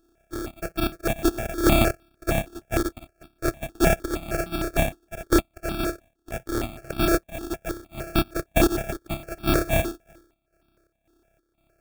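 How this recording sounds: a buzz of ramps at a fixed pitch in blocks of 128 samples; chopped level 1.9 Hz, depth 65%, duty 65%; aliases and images of a low sample rate 1000 Hz, jitter 0%; notches that jump at a steady rate 6.5 Hz 590–1900 Hz

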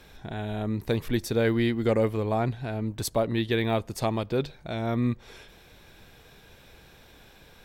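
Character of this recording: noise floor -54 dBFS; spectral tilt -6.0 dB/oct

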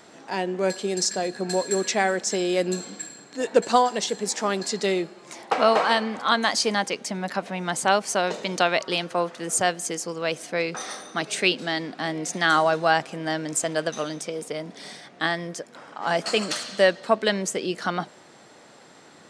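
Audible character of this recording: noise floor -50 dBFS; spectral tilt -3.0 dB/oct

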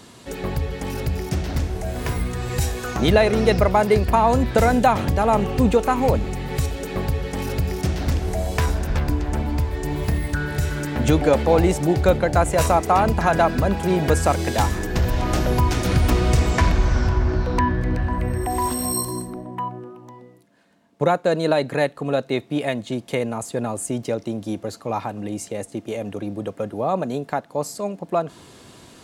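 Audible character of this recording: noise floor -47 dBFS; spectral tilt -6.0 dB/oct

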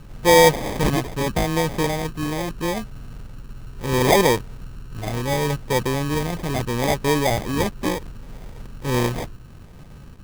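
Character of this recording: phasing stages 12, 0.74 Hz, lowest notch 540–1200 Hz; aliases and images of a low sample rate 1400 Hz, jitter 0%

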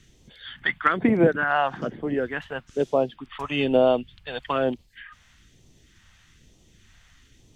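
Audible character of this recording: phasing stages 2, 1.1 Hz, lowest notch 340–1500 Hz

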